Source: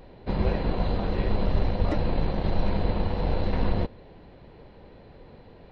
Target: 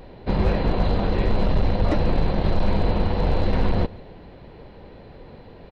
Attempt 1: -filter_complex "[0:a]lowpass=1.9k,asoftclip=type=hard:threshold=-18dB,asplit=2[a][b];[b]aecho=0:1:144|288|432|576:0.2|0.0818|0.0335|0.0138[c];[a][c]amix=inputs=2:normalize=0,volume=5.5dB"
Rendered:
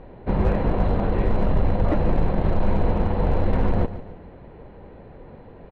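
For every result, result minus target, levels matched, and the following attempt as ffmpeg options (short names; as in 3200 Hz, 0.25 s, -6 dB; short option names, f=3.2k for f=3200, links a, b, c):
echo-to-direct +10 dB; 2000 Hz band -2.5 dB
-filter_complex "[0:a]lowpass=1.9k,asoftclip=type=hard:threshold=-18dB,asplit=2[a][b];[b]aecho=0:1:144|288|432:0.0631|0.0259|0.0106[c];[a][c]amix=inputs=2:normalize=0,volume=5.5dB"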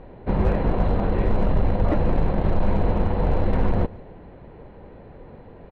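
2000 Hz band -2.5 dB
-filter_complex "[0:a]asoftclip=type=hard:threshold=-18dB,asplit=2[a][b];[b]aecho=0:1:144|288|432:0.0631|0.0259|0.0106[c];[a][c]amix=inputs=2:normalize=0,volume=5.5dB"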